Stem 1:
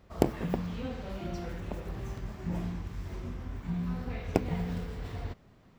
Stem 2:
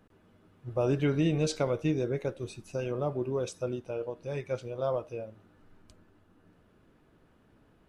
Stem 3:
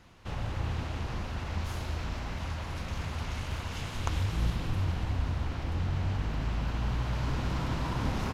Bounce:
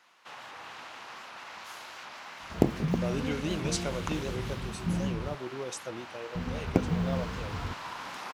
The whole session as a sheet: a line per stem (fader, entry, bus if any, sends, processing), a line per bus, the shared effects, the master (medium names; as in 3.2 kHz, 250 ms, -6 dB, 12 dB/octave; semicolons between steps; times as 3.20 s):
-4.5 dB, 2.40 s, muted 5.35–6.35 s, no send, none
-6.5 dB, 2.25 s, no send, tilt EQ +4 dB/octave
-0.5 dB, 0.00 s, no send, Chebyshev high-pass 1.1 kHz, order 2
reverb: none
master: peaking EQ 180 Hz +9 dB 2.7 oct; warped record 78 rpm, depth 160 cents